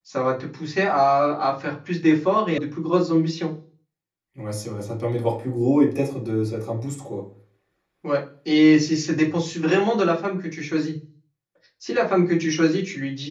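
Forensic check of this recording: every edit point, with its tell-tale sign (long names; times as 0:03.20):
0:02.58: cut off before it has died away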